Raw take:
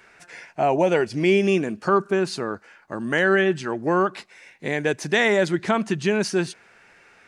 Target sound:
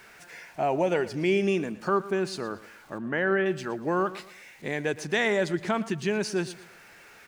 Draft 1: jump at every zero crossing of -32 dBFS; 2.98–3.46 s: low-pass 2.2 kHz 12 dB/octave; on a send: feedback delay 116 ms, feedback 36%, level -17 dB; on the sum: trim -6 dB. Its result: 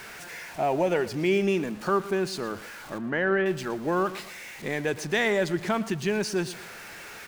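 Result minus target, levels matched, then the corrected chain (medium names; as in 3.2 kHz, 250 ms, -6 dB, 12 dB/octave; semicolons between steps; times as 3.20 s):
jump at every zero crossing: distortion +11 dB
jump at every zero crossing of -44 dBFS; 2.98–3.46 s: low-pass 2.2 kHz 12 dB/octave; on a send: feedback delay 116 ms, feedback 36%, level -17 dB; on the sum: trim -6 dB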